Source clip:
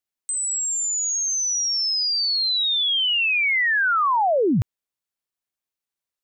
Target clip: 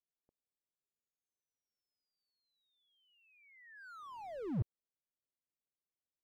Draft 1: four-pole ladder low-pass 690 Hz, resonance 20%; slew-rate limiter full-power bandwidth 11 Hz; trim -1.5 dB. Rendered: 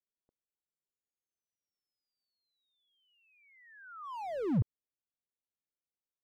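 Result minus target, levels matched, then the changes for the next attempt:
slew-rate limiter: distortion -8 dB
change: slew-rate limiter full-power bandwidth 4.5 Hz

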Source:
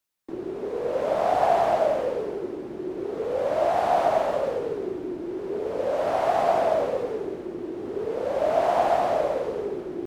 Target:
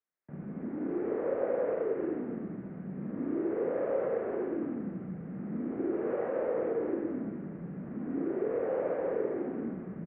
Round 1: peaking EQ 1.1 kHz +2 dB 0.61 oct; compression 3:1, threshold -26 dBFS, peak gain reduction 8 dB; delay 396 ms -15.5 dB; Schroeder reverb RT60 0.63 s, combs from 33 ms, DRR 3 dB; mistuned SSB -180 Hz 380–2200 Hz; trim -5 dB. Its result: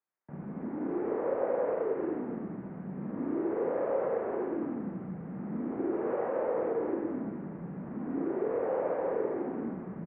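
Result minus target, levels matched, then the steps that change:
1 kHz band +4.0 dB
change: peaking EQ 1.1 kHz -6 dB 0.61 oct

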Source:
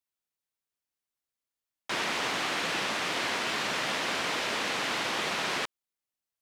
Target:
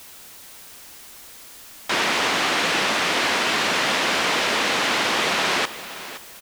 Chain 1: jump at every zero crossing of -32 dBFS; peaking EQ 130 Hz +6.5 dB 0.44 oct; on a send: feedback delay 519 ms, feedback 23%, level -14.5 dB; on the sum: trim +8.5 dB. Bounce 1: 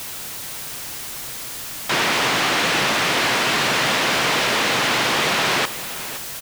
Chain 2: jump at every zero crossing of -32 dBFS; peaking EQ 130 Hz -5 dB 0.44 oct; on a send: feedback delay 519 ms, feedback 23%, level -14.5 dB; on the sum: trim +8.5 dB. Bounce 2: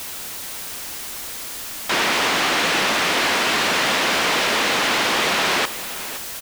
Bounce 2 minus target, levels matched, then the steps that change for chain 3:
jump at every zero crossing: distortion +10 dB
change: jump at every zero crossing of -43.5 dBFS

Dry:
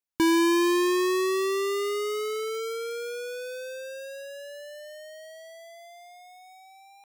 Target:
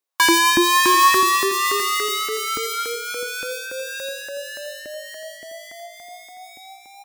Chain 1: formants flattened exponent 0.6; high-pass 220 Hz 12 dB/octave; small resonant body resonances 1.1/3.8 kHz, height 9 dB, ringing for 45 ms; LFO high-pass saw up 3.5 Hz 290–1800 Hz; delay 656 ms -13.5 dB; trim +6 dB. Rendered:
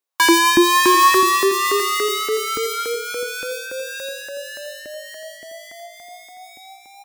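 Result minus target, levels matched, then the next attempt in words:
500 Hz band +3.5 dB
formants flattened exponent 0.6; high-pass 220 Hz 12 dB/octave; dynamic bell 460 Hz, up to -7 dB, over -40 dBFS, Q 1.1; small resonant body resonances 1.1/3.8 kHz, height 9 dB, ringing for 45 ms; LFO high-pass saw up 3.5 Hz 290–1800 Hz; delay 656 ms -13.5 dB; trim +6 dB

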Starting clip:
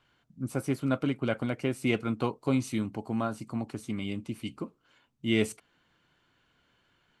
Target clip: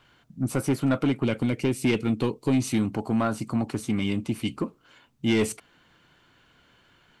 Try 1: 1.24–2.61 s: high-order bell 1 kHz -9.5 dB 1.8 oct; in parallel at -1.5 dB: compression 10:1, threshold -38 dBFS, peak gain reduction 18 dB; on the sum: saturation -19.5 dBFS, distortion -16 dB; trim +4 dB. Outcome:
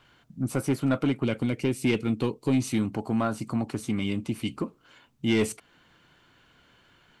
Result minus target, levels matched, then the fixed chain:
compression: peak gain reduction +9 dB
1.24–2.61 s: high-order bell 1 kHz -9.5 dB 1.8 oct; in parallel at -1.5 dB: compression 10:1, threshold -28 dBFS, peak gain reduction 9 dB; on the sum: saturation -19.5 dBFS, distortion -14 dB; trim +4 dB

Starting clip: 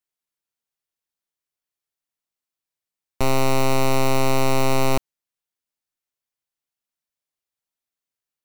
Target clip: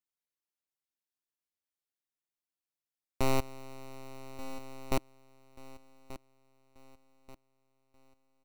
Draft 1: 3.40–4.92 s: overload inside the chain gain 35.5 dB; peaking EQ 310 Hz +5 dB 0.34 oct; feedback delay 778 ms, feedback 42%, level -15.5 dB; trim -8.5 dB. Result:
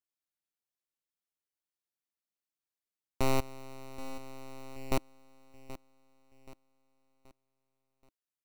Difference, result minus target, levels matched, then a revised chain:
echo 406 ms early
3.40–4.92 s: overload inside the chain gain 35.5 dB; peaking EQ 310 Hz +5 dB 0.34 oct; feedback delay 1184 ms, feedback 42%, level -15.5 dB; trim -8.5 dB

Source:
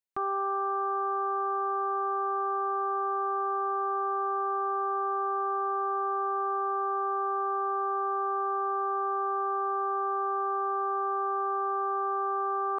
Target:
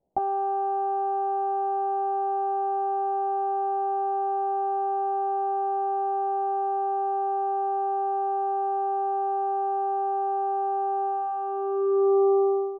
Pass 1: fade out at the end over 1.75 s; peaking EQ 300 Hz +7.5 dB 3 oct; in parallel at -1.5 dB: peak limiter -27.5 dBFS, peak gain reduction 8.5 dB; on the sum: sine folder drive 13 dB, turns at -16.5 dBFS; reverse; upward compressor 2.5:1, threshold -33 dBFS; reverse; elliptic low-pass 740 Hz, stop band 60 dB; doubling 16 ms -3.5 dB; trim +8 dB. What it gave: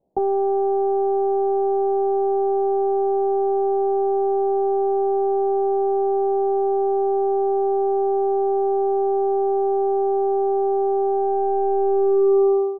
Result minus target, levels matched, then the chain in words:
250 Hz band +4.0 dB
fade out at the end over 1.75 s; in parallel at -1.5 dB: peak limiter -27.5 dBFS, peak gain reduction 4.5 dB; on the sum: sine folder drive 13 dB, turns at -16.5 dBFS; reverse; upward compressor 2.5:1, threshold -33 dBFS; reverse; elliptic low-pass 740 Hz, stop band 60 dB; doubling 16 ms -3.5 dB; trim +8 dB

